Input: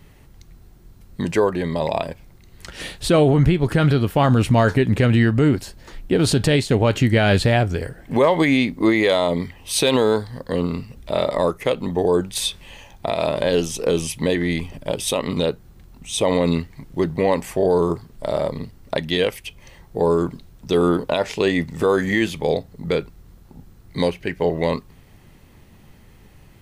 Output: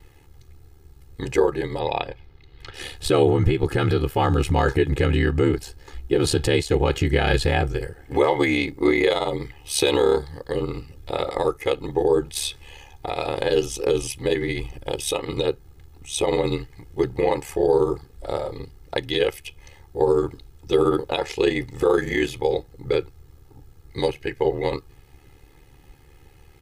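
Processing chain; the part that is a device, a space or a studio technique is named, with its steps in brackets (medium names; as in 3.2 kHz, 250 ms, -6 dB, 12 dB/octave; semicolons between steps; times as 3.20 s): 1.79–2.74 s: resonant high shelf 5.4 kHz -14 dB, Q 1.5; ring-modulated robot voice (ring modulator 36 Hz; comb 2.4 ms, depth 75%); trim -1.5 dB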